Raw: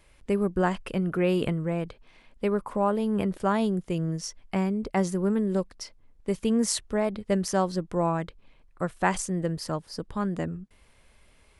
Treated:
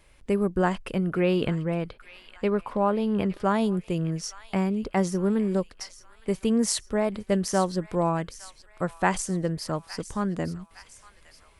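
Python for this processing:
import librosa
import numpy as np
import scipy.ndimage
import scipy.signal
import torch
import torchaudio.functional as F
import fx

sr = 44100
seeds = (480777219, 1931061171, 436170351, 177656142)

y = fx.high_shelf_res(x, sr, hz=5900.0, db=-6.5, q=1.5, at=(1.14, 3.44))
y = fx.echo_wet_highpass(y, sr, ms=862, feedback_pct=51, hz=1700.0, wet_db=-12.5)
y = y * librosa.db_to_amplitude(1.0)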